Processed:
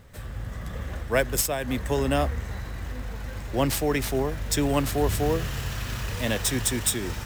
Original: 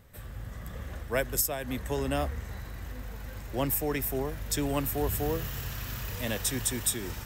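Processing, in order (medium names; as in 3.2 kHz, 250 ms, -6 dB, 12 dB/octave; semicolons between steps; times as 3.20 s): median filter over 3 samples; trim +6 dB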